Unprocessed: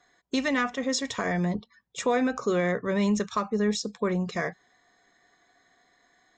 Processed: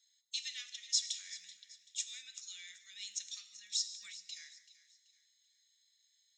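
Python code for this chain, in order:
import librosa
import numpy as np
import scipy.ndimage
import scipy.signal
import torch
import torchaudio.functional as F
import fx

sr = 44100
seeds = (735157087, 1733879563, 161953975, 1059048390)

y = scipy.signal.sosfilt(scipy.signal.cheby2(4, 60, 1000.0, 'highpass', fs=sr, output='sos'), x)
y = fx.echo_feedback(y, sr, ms=383, feedback_pct=36, wet_db=-16.5)
y = fx.rev_gated(y, sr, seeds[0], gate_ms=220, shape='flat', drr_db=11.0)
y = fx.pre_swell(y, sr, db_per_s=32.0, at=(3.84, 4.24))
y = y * 10.0 ** (-1.0 / 20.0)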